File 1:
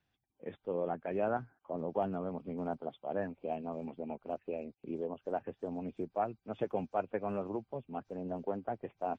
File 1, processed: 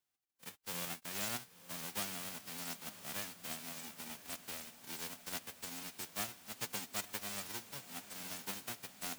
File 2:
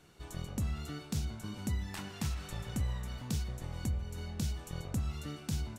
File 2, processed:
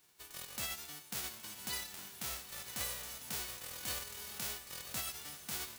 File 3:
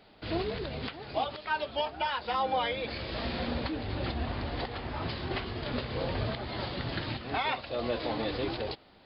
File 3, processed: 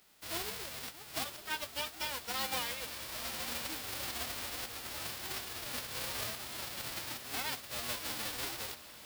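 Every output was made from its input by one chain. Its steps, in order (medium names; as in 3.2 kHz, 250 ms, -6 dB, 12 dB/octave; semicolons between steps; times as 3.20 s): formants flattened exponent 0.1; echo that smears into a reverb 1000 ms, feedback 61%, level -14 dB; trim -7 dB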